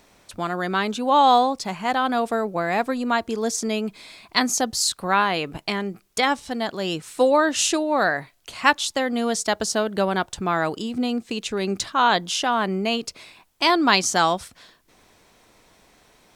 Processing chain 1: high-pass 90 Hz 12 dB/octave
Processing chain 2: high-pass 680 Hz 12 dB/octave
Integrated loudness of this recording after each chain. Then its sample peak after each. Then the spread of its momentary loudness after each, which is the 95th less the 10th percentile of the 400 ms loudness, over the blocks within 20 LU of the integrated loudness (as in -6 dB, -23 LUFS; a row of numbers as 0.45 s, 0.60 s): -22.5 LUFS, -24.0 LUFS; -1.5 dBFS, -2.0 dBFS; 10 LU, 13 LU